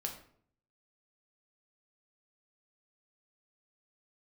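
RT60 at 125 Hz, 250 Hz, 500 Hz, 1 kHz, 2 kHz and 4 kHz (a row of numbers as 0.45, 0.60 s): 0.85, 0.75, 0.65, 0.55, 0.45, 0.40 s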